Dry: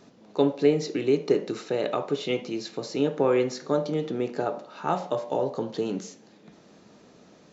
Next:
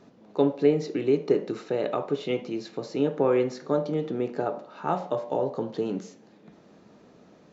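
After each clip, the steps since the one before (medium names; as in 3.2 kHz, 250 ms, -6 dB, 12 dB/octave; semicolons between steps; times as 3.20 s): treble shelf 3.2 kHz -10 dB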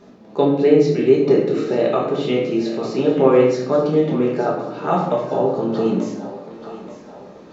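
thinning echo 883 ms, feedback 54%, high-pass 360 Hz, level -13 dB; simulated room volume 190 m³, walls mixed, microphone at 1.3 m; trim +4.5 dB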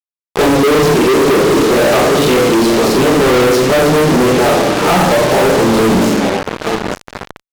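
fuzz box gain 39 dB, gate -32 dBFS; wow and flutter 24 cents; trim +4.5 dB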